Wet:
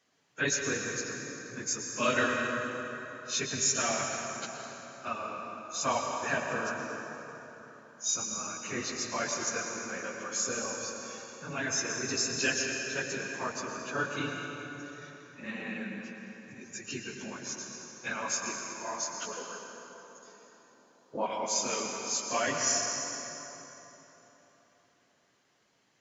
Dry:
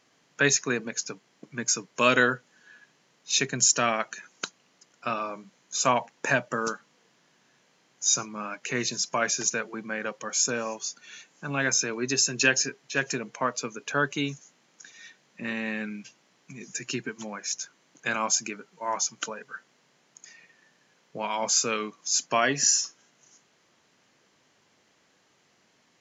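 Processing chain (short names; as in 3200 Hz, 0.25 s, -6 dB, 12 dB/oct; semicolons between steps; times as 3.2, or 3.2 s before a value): phase scrambler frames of 50 ms; 19.37–21.26 graphic EQ 125/250/500/1000/2000/4000 Hz -4/+10/+7/+9/-12/+3 dB; reverb RT60 3.8 s, pre-delay 98 ms, DRR 1.5 dB; gain -7.5 dB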